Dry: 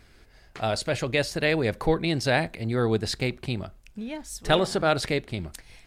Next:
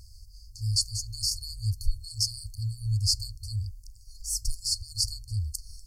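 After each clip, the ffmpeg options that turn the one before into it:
ffmpeg -i in.wav -af "afftfilt=real='re*(1-between(b*sr/4096,110,4300))':imag='im*(1-between(b*sr/4096,110,4300))':win_size=4096:overlap=0.75,volume=8dB" out.wav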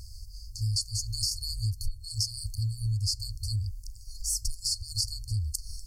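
ffmpeg -i in.wav -af "acompressor=threshold=-32dB:ratio=6,volume=5.5dB" out.wav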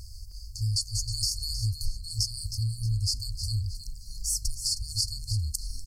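ffmpeg -i in.wav -filter_complex "[0:a]asplit=5[link_01][link_02][link_03][link_04][link_05];[link_02]adelay=314,afreqshift=-68,volume=-10dB[link_06];[link_03]adelay=628,afreqshift=-136,volume=-19.1dB[link_07];[link_04]adelay=942,afreqshift=-204,volume=-28.2dB[link_08];[link_05]adelay=1256,afreqshift=-272,volume=-37.4dB[link_09];[link_01][link_06][link_07][link_08][link_09]amix=inputs=5:normalize=0,volume=1dB" out.wav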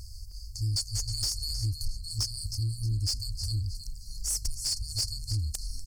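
ffmpeg -i in.wav -af "asoftclip=type=tanh:threshold=-21.5dB" out.wav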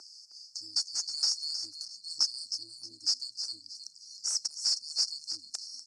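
ffmpeg -i in.wav -af "highpass=frequency=350:width=0.5412,highpass=frequency=350:width=1.3066,equalizer=frequency=480:width_type=q:width=4:gain=-8,equalizer=frequency=890:width_type=q:width=4:gain=4,equalizer=frequency=1400:width_type=q:width=4:gain=7,equalizer=frequency=2200:width_type=q:width=4:gain=-3,equalizer=frequency=3200:width_type=q:width=4:gain=-9,equalizer=frequency=5400:width_type=q:width=4:gain=9,lowpass=frequency=7700:width=0.5412,lowpass=frequency=7700:width=1.3066,volume=-1.5dB" out.wav

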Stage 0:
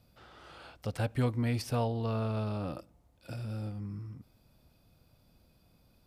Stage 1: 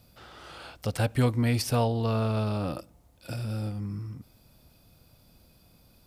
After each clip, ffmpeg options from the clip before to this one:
ffmpeg -i in.wav -af "highshelf=frequency=4400:gain=6.5,volume=5.5dB" out.wav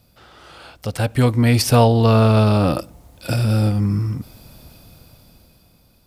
ffmpeg -i in.wav -af "dynaudnorm=framelen=260:gausssize=11:maxgain=14dB,volume=2dB" out.wav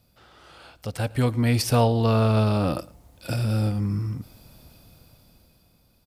ffmpeg -i in.wav -af "aecho=1:1:110:0.075,volume=-6.5dB" out.wav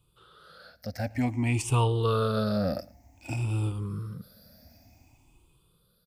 ffmpeg -i in.wav -af "afftfilt=real='re*pow(10,18/40*sin(2*PI*(0.66*log(max(b,1)*sr/1024/100)/log(2)-(0.54)*(pts-256)/sr)))':imag='im*pow(10,18/40*sin(2*PI*(0.66*log(max(b,1)*sr/1024/100)/log(2)-(0.54)*(pts-256)/sr)))':win_size=1024:overlap=0.75,volume=-8.5dB" out.wav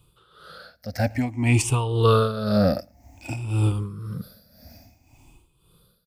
ffmpeg -i in.wav -af "tremolo=f=1.9:d=0.74,volume=9dB" out.wav

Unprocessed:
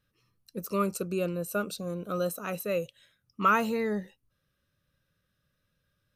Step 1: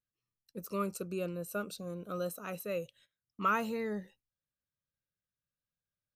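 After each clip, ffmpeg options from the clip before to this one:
ffmpeg -i in.wav -af "agate=range=-15dB:threshold=-56dB:ratio=16:detection=peak,volume=-6.5dB" out.wav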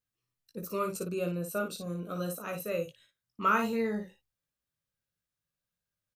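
ffmpeg -i in.wav -af "aecho=1:1:18|57:0.531|0.473,volume=2dB" out.wav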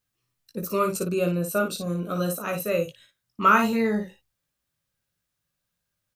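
ffmpeg -i in.wav -af "bandreject=frequency=470:width=13,volume=8.5dB" out.wav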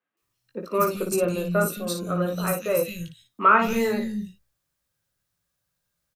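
ffmpeg -i in.wav -filter_complex "[0:a]asplit=2[link_01][link_02];[link_02]aeval=exprs='clip(val(0),-1,0.0501)':channel_layout=same,volume=-9dB[link_03];[link_01][link_03]amix=inputs=2:normalize=0,acrossover=split=220|2700[link_04][link_05][link_06];[link_06]adelay=170[link_07];[link_04]adelay=220[link_08];[link_08][link_05][link_07]amix=inputs=3:normalize=0" out.wav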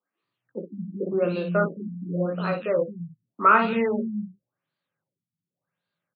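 ffmpeg -i in.wav -af "highpass=frequency=140:width=0.5412,highpass=frequency=140:width=1.3066,afftfilt=real='re*lt(b*sr/1024,270*pow(4900/270,0.5+0.5*sin(2*PI*0.89*pts/sr)))':imag='im*lt(b*sr/1024,270*pow(4900/270,0.5+0.5*sin(2*PI*0.89*pts/sr)))':win_size=1024:overlap=0.75" out.wav

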